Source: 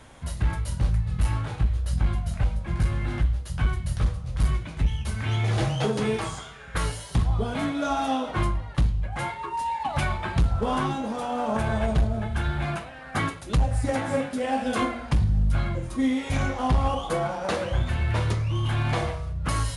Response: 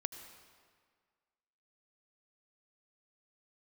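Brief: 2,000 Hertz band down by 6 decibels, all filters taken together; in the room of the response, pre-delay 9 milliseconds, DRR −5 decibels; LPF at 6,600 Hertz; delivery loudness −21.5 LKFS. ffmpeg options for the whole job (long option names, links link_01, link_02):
-filter_complex "[0:a]lowpass=6600,equalizer=frequency=2000:width_type=o:gain=-8,asplit=2[link_01][link_02];[1:a]atrim=start_sample=2205,adelay=9[link_03];[link_02][link_03]afir=irnorm=-1:irlink=0,volume=5.5dB[link_04];[link_01][link_04]amix=inputs=2:normalize=0"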